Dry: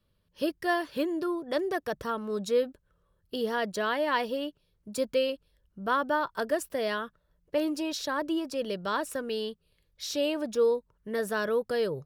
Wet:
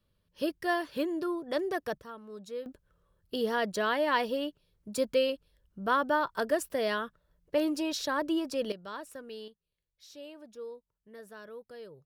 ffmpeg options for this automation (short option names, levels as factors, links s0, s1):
-af "asetnsamples=n=441:p=0,asendcmd='1.98 volume volume -13dB;2.66 volume volume 0dB;8.72 volume volume -11dB;9.48 volume volume -18dB',volume=0.794"